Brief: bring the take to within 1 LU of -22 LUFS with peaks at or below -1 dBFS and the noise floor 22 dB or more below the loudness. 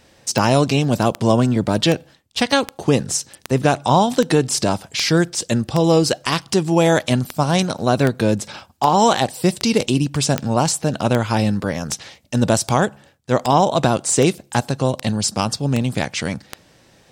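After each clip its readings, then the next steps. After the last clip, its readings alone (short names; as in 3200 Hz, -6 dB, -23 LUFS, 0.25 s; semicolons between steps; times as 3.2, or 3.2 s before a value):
clicks 22; loudness -18.5 LUFS; peak -2.0 dBFS; loudness target -22.0 LUFS
-> de-click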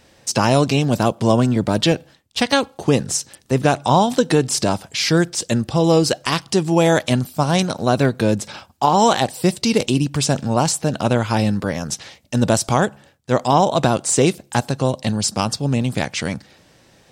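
clicks 0; loudness -18.5 LUFS; peak -3.0 dBFS; loudness target -22.0 LUFS
-> gain -3.5 dB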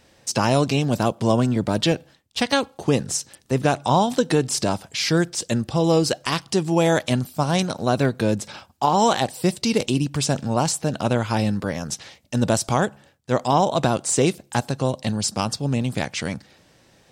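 loudness -22.0 LUFS; peak -6.5 dBFS; noise floor -57 dBFS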